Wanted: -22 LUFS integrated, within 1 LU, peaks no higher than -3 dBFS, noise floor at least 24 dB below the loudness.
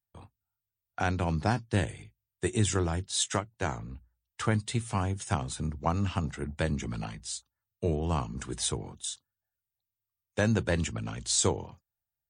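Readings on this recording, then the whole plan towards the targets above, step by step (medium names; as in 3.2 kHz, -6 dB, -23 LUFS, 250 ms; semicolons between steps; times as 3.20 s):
loudness -31.0 LUFS; peak level -13.5 dBFS; loudness target -22.0 LUFS
-> trim +9 dB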